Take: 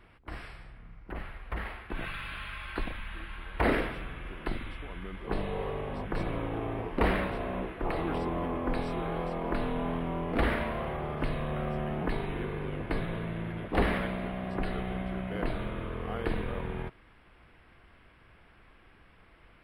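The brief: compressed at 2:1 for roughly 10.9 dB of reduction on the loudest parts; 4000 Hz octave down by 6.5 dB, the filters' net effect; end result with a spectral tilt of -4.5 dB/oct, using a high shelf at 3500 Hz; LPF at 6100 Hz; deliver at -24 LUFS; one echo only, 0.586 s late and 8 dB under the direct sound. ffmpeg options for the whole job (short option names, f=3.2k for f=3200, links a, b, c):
-af "lowpass=6.1k,highshelf=f=3.5k:g=-8.5,equalizer=f=4k:t=o:g=-3.5,acompressor=threshold=-42dB:ratio=2,aecho=1:1:586:0.398,volume=17.5dB"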